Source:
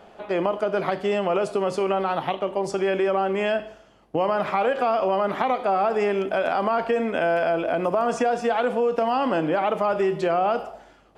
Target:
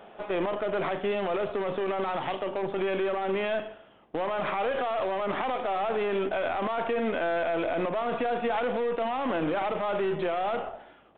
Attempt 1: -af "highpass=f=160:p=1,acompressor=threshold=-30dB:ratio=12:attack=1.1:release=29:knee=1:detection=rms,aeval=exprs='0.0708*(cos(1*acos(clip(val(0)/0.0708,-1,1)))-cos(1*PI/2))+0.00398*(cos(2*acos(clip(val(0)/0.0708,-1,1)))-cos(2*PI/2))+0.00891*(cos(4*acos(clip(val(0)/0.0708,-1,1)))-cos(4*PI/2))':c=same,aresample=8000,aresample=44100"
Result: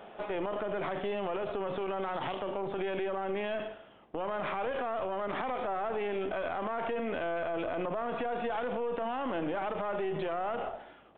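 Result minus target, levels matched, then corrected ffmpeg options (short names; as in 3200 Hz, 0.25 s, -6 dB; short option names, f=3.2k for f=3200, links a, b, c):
compressor: peak gain reduction +6 dB
-af "highpass=f=160:p=1,acompressor=threshold=-23.5dB:ratio=12:attack=1.1:release=29:knee=1:detection=rms,aeval=exprs='0.0708*(cos(1*acos(clip(val(0)/0.0708,-1,1)))-cos(1*PI/2))+0.00398*(cos(2*acos(clip(val(0)/0.0708,-1,1)))-cos(2*PI/2))+0.00891*(cos(4*acos(clip(val(0)/0.0708,-1,1)))-cos(4*PI/2))':c=same,aresample=8000,aresample=44100"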